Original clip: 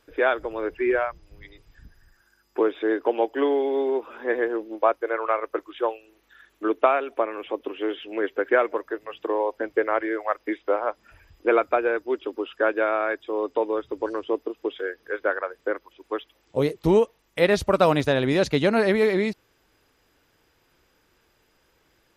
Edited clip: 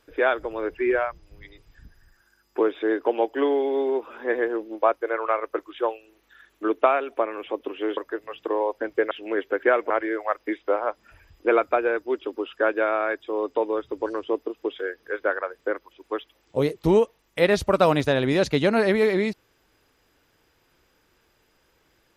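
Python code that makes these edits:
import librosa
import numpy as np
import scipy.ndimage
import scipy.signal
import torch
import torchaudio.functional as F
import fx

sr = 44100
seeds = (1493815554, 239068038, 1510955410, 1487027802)

y = fx.edit(x, sr, fx.move(start_s=7.97, length_s=0.79, to_s=9.9), tone=tone)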